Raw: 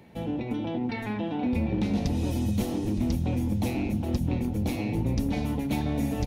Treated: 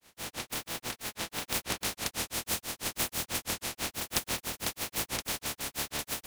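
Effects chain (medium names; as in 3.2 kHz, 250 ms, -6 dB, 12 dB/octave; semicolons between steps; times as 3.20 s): spectral contrast reduction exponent 0.15; granulator 147 ms, grains 6.1 per s, spray 29 ms; trim -2.5 dB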